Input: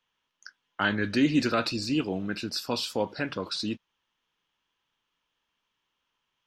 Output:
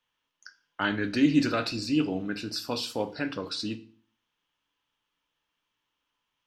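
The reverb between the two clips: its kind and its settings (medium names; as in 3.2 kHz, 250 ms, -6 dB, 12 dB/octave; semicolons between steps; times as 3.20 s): FDN reverb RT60 0.43 s, low-frequency decay 1.3×, high-frequency decay 0.95×, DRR 8.5 dB; trim -2 dB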